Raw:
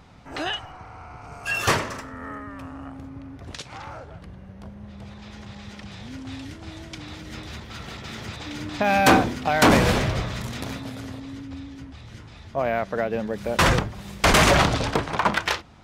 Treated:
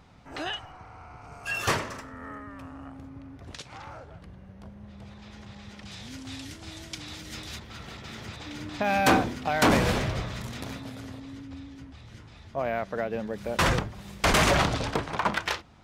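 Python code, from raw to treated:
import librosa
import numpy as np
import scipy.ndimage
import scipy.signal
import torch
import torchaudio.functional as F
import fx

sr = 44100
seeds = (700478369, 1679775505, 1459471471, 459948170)

y = fx.high_shelf(x, sr, hz=3300.0, db=12.0, at=(5.85, 7.59))
y = y * librosa.db_to_amplitude(-5.0)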